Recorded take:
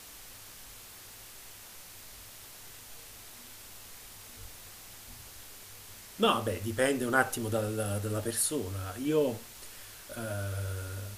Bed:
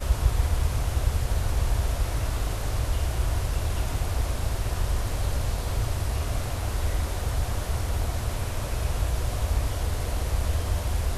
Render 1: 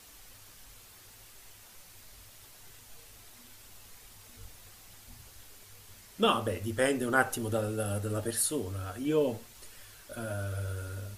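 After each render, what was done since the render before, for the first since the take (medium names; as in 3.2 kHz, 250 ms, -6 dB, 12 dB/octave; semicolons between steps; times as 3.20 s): noise reduction 6 dB, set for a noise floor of -50 dBFS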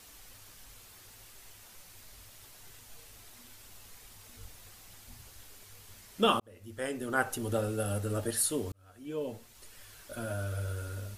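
6.40–7.58 s: fade in; 8.72–10.01 s: fade in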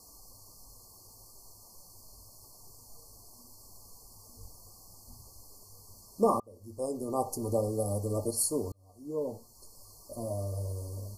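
FFT band-reject 1.2–4.2 kHz; dynamic bell 560 Hz, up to +3 dB, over -43 dBFS, Q 1.1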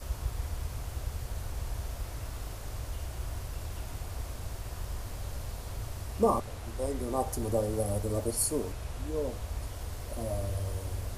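add bed -11.5 dB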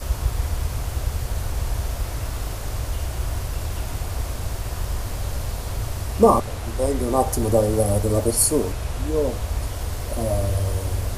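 trim +11 dB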